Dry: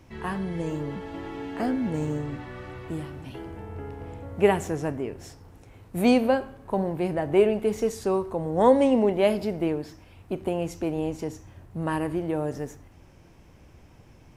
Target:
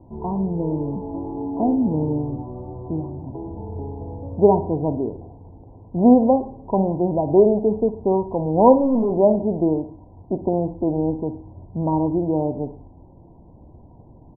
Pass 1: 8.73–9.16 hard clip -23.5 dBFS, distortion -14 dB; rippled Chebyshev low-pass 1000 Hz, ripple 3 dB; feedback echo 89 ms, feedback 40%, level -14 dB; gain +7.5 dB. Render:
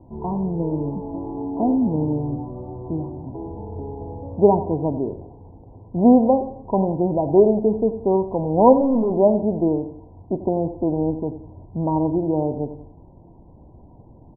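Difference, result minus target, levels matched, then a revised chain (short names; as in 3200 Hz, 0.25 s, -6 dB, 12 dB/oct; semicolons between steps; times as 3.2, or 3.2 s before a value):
echo 32 ms late
8.73–9.16 hard clip -23.5 dBFS, distortion -14 dB; rippled Chebyshev low-pass 1000 Hz, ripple 3 dB; feedback echo 57 ms, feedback 40%, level -14 dB; gain +7.5 dB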